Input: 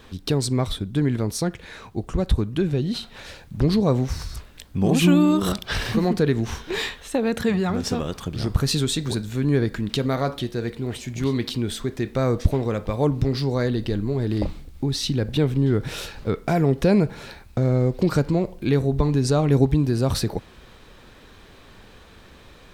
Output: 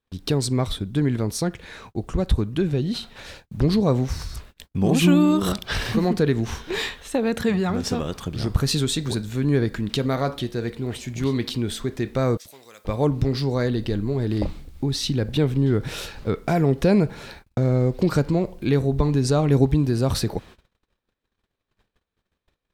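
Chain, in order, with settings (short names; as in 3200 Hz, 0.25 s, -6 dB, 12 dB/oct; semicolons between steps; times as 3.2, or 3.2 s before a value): gate -42 dBFS, range -37 dB; 12.37–12.85 differentiator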